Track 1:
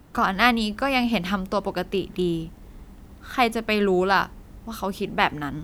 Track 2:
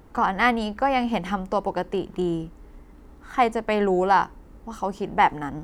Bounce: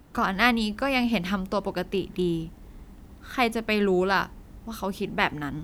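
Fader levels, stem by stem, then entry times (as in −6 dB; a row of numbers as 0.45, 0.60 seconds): −2.5, −15.0 decibels; 0.00, 0.00 seconds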